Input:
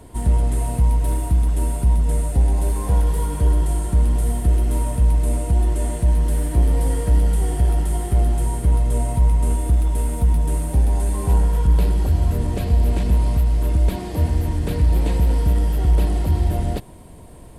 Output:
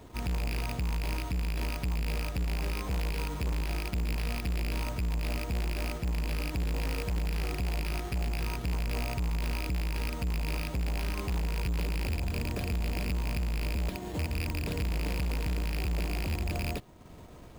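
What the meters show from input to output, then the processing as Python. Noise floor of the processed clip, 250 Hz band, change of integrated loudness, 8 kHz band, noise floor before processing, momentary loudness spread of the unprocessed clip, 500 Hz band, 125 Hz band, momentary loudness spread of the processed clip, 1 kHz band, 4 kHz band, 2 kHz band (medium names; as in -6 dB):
-48 dBFS, -10.0 dB, -13.0 dB, -11.5 dB, -39 dBFS, 3 LU, -10.5 dB, -14.0 dB, 1 LU, -10.0 dB, +1.0 dB, +2.5 dB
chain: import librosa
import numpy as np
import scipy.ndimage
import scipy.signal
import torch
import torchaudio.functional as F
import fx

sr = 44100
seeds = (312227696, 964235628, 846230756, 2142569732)

y = fx.rattle_buzz(x, sr, strikes_db=-19.0, level_db=-12.0)
y = np.repeat(y[::6], 6)[:len(y)]
y = fx.low_shelf(y, sr, hz=71.0, db=-5.5)
y = fx.transient(y, sr, attack_db=-2, sustain_db=-6)
y = 10.0 ** (-22.5 / 20.0) * np.tanh(y / 10.0 ** (-22.5 / 20.0))
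y = y * 10.0 ** (-5.0 / 20.0)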